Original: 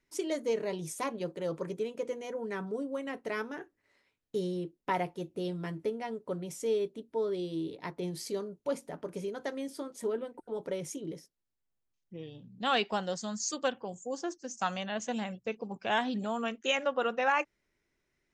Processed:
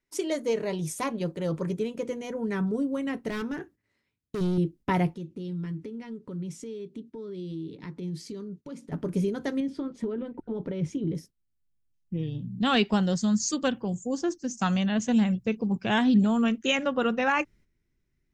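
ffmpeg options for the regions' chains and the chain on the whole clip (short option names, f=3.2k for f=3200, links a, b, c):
-filter_complex "[0:a]asettb=1/sr,asplit=3[a][b][c];[a]atrim=end=3.304[d];[b]atrim=start=3.3:end=4.58,asetpts=PTS-STARTPTS,afade=t=in:d=0.004:c=qsin,afade=t=out:st=1.276:d=0.004:c=qsin,highpass=66,asoftclip=type=hard:threshold=-35dB[e];[c]atrim=start=4.576[f];[d][e]acrossfade=d=0.004:c1=hsin:c2=qsin[g];[g][f]acrossfade=d=0.004:c1=qsin:c2=hsin,asettb=1/sr,asplit=3[h][i][j];[h]atrim=end=5.144[k];[i]atrim=start=5.14:end=8.92,asetpts=PTS-STARTPTS,afade=t=in:d=0.004:c=qsin,afade=t=out:st=3.776:d=0.004:c=qsin,highpass=130,lowpass=7.4k,equalizer=f=690:t=o:w=0.5:g=-9,acompressor=threshold=-49dB:ratio=2.5:attack=3.2:release=140:knee=1:detection=peak[l];[j]atrim=start=8.916[m];[k][l]acrossfade=d=0.004:c1=hsin:c2=qsin[n];[n][m]acrossfade=d=0.004:c1=qsin:c2=hsin,asettb=1/sr,asplit=3[o][p][q];[o]atrim=end=9.604[r];[p]atrim=start=9.6:end=11.15,asetpts=PTS-STARTPTS,afade=t=in:d=0.004:c=qsin,afade=t=out:st=1.546:d=0.004:c=qsin,lowpass=3.4k,acompressor=threshold=-36dB:ratio=4:attack=3.2:release=140:knee=1:detection=peak[s];[q]atrim=start=11.146[t];[r][s]acrossfade=d=0.004:c1=hsin:c2=qsin[u];[u][t]acrossfade=d=0.004:c1=qsin:c2=hsin,agate=range=-10dB:threshold=-58dB:ratio=16:detection=peak,asubboost=boost=6:cutoff=240,volume=4.5dB"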